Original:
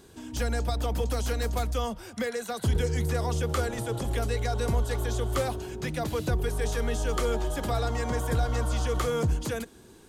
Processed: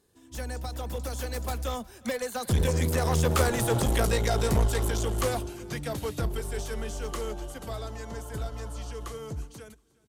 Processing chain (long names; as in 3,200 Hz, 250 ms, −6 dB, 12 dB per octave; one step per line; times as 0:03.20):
source passing by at 0:03.76, 20 m/s, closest 16 metres
high-shelf EQ 8,100 Hz +7 dB
in parallel at 0 dB: brickwall limiter −27 dBFS, peak gain reduction 9.5 dB
on the sum: asymmetric clip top −29 dBFS
on a send: repeating echo 361 ms, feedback 31%, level −19.5 dB
on the sum: expander for the loud parts 1.5 to 1, over −51 dBFS
level +5 dB